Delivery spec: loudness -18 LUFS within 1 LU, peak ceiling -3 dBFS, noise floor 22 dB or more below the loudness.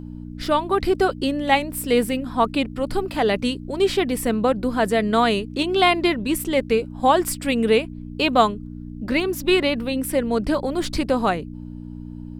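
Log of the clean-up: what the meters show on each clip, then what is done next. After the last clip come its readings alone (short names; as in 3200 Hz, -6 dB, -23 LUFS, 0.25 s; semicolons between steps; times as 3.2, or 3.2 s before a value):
hum 60 Hz; harmonics up to 300 Hz; hum level -32 dBFS; loudness -21.5 LUFS; peak -3.0 dBFS; loudness target -18.0 LUFS
-> de-hum 60 Hz, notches 5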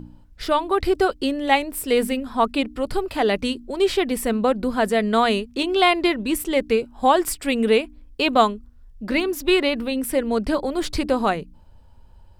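hum none; loudness -21.5 LUFS; peak -2.5 dBFS; loudness target -18.0 LUFS
-> gain +3.5 dB; limiter -3 dBFS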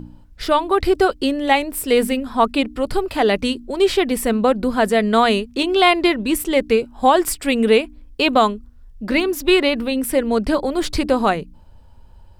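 loudness -18.0 LUFS; peak -3.0 dBFS; noise floor -45 dBFS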